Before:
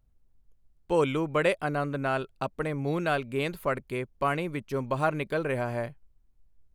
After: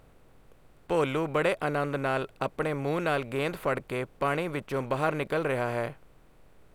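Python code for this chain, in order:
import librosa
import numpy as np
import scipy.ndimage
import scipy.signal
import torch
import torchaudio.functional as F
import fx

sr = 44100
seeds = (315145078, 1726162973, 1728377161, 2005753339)

y = fx.bin_compress(x, sr, power=0.6)
y = F.gain(torch.from_numpy(y), -3.5).numpy()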